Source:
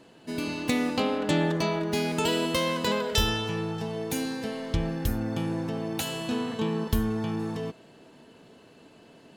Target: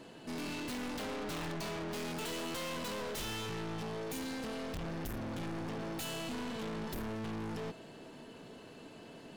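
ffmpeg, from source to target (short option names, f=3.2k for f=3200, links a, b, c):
-af "aeval=exprs='(mod(6.68*val(0)+1,2)-1)/6.68':c=same,aeval=exprs='(tanh(112*val(0)+0.25)-tanh(0.25))/112':c=same,volume=2.5dB"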